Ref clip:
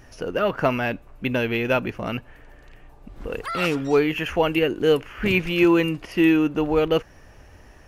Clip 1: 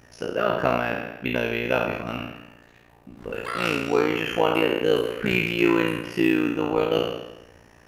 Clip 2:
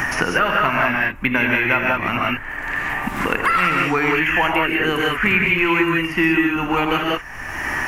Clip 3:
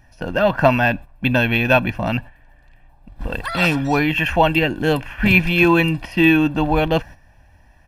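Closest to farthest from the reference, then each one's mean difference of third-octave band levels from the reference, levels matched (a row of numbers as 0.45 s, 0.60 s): 3, 1, 2; 4.0 dB, 5.5 dB, 9.5 dB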